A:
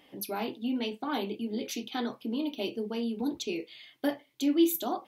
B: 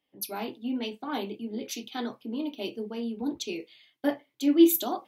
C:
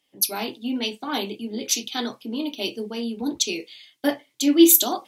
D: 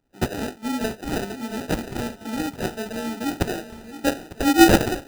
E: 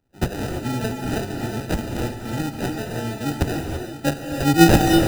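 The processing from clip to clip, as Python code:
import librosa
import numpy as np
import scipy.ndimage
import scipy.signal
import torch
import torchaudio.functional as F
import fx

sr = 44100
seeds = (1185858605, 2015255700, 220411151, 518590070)

y1 = fx.band_widen(x, sr, depth_pct=70)
y2 = fx.peak_eq(y1, sr, hz=7300.0, db=13.0, octaves=2.3)
y2 = F.gain(torch.from_numpy(y2), 4.0).numpy()
y3 = fx.sample_hold(y2, sr, seeds[0], rate_hz=1100.0, jitter_pct=0)
y3 = fx.echo_swing(y3, sr, ms=900, ratio=3, feedback_pct=41, wet_db=-13.5)
y4 = fx.octave_divider(y3, sr, octaves=1, level_db=0.0)
y4 = fx.rev_gated(y4, sr, seeds[1], gate_ms=360, shape='rising', drr_db=3.5)
y4 = F.gain(torch.from_numpy(y4), -1.0).numpy()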